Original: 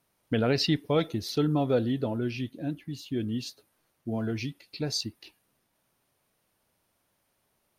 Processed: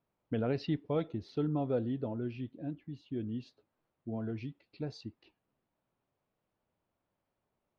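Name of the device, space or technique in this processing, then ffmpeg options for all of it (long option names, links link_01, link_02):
phone in a pocket: -af "lowpass=3200,equalizer=frequency=1800:width_type=o:width=0.93:gain=-3.5,highshelf=frequency=2500:gain=-9,volume=-6.5dB"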